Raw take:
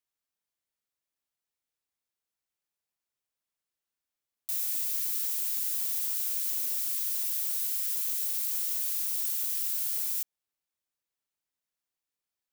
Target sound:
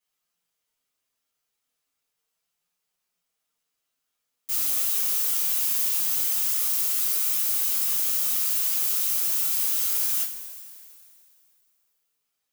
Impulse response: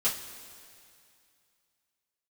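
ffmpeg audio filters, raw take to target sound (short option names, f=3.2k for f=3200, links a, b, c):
-filter_complex "[0:a]aeval=exprs='0.15*(cos(1*acos(clip(val(0)/0.15,-1,1)))-cos(1*PI/2))+0.0668*(cos(5*acos(clip(val(0)/0.15,-1,1)))-cos(5*PI/2))':c=same,flanger=delay=5.4:depth=2.7:regen=49:speed=0.35:shape=sinusoidal[a];[1:a]atrim=start_sample=2205[b];[a][b]afir=irnorm=-1:irlink=0,volume=-5dB"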